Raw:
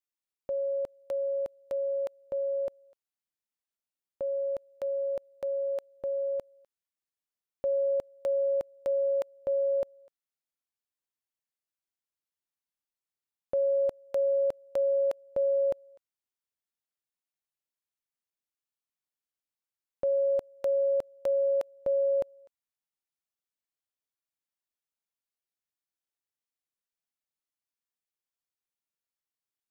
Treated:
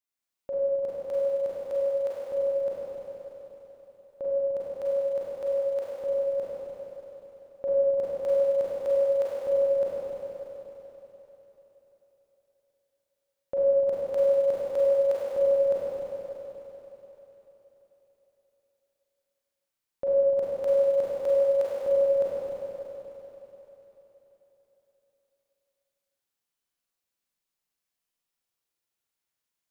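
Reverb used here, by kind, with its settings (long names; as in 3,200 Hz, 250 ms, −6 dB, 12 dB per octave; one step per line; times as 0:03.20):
four-comb reverb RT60 3.9 s, combs from 33 ms, DRR −8 dB
level −1.5 dB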